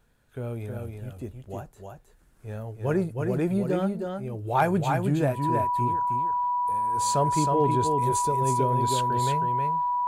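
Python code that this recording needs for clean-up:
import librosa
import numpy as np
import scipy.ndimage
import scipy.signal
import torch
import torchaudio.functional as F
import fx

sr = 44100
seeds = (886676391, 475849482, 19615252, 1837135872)

y = fx.fix_declip(x, sr, threshold_db=-12.5)
y = fx.notch(y, sr, hz=980.0, q=30.0)
y = fx.fix_echo_inverse(y, sr, delay_ms=316, level_db=-4.5)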